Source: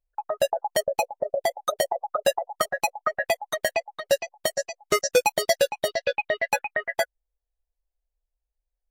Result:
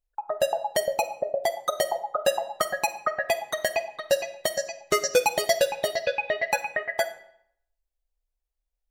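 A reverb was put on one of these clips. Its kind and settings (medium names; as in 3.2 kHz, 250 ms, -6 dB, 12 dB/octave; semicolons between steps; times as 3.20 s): algorithmic reverb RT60 0.69 s, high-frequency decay 0.85×, pre-delay 5 ms, DRR 11 dB; trim -1 dB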